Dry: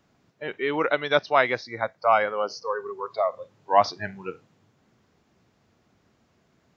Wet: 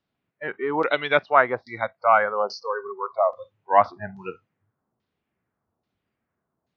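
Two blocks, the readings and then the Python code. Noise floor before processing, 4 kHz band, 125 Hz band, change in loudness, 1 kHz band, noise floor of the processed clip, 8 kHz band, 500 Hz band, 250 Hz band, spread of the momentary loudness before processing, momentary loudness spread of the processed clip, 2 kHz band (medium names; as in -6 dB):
-67 dBFS, -2.5 dB, 0.0 dB, +2.0 dB, +2.5 dB, -82 dBFS, no reading, +1.0 dB, +0.5 dB, 15 LU, 16 LU, +2.0 dB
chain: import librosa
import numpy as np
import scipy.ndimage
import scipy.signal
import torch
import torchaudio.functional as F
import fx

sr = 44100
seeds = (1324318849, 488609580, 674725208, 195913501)

y = fx.noise_reduce_blind(x, sr, reduce_db=16)
y = fx.filter_lfo_lowpass(y, sr, shape='saw_down', hz=1.2, low_hz=830.0, high_hz=4500.0, q=1.9)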